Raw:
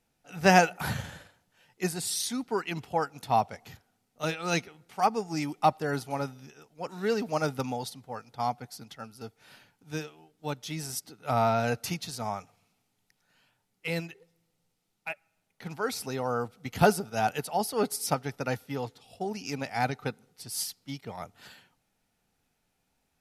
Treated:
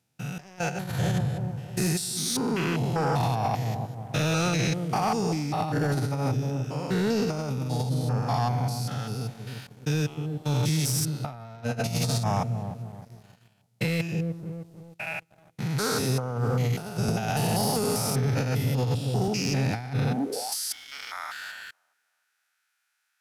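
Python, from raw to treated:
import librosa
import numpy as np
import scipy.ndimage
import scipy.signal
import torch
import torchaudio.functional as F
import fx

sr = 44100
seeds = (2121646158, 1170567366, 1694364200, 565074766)

y = fx.spec_steps(x, sr, hold_ms=200)
y = fx.high_shelf(y, sr, hz=3500.0, db=10.0)
y = fx.echo_wet_lowpass(y, sr, ms=309, feedback_pct=39, hz=520.0, wet_db=-6.5)
y = fx.filter_sweep_highpass(y, sr, from_hz=120.0, to_hz=1500.0, start_s=20.05, end_s=20.62, q=4.5)
y = fx.over_compress(y, sr, threshold_db=-31.0, ratio=-0.5)
y = fx.leveller(y, sr, passes=2)
y = fx.high_shelf(y, sr, hz=7900.0, db=-6.0)
y = fx.band_squash(y, sr, depth_pct=40, at=(17.08, 19.28))
y = y * librosa.db_to_amplitude(-1.0)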